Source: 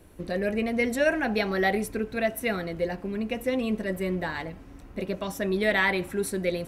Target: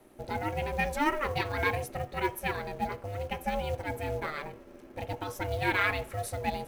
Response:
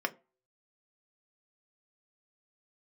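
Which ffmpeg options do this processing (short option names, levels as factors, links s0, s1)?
-filter_complex "[0:a]acrusher=bits=6:mode=log:mix=0:aa=0.000001,aeval=exprs='val(0)*sin(2*PI*300*n/s)':c=same,asplit=2[s0][s1];[1:a]atrim=start_sample=2205,asetrate=52920,aresample=44100[s2];[s1][s2]afir=irnorm=-1:irlink=0,volume=0.251[s3];[s0][s3]amix=inputs=2:normalize=0,volume=0.668"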